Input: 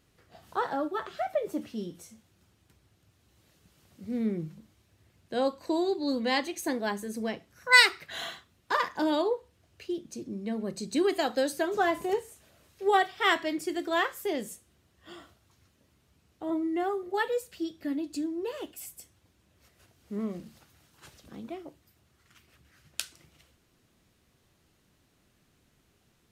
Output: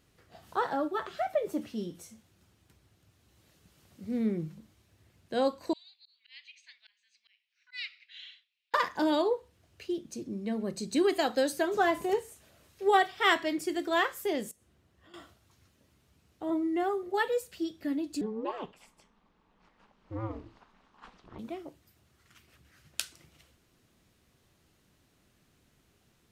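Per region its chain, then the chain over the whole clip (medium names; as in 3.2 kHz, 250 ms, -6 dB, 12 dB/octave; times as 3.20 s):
5.73–8.74 s: elliptic band-pass 2.4–7.9 kHz, stop band 70 dB + slow attack 275 ms + distance through air 320 m
14.51–15.14 s: compression 10:1, threshold -54 dBFS + treble shelf 2.8 kHz -7.5 dB
18.21–21.39 s: peaking EQ 1 kHz +13 dB 0.6 oct + ring modulator 110 Hz + low-pass 3.4 kHz
whole clip: none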